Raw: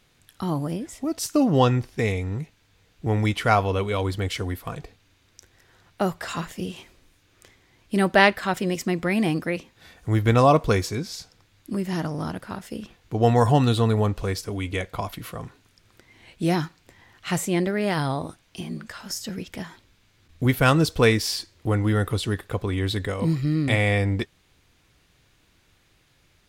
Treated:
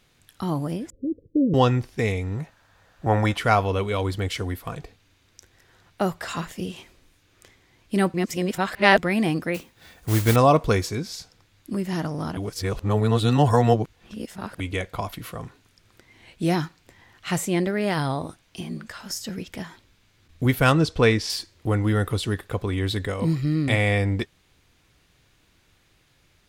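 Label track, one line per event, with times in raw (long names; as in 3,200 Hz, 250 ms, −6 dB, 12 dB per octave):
0.900000	1.540000	Chebyshev low-pass filter 550 Hz, order 8
2.390000	3.370000	gain on a spectral selection 510–1,900 Hz +10 dB
8.140000	8.980000	reverse
9.540000	10.360000	noise that follows the level under the signal 12 dB
12.370000	14.600000	reverse
20.720000	21.300000	high-frequency loss of the air 62 metres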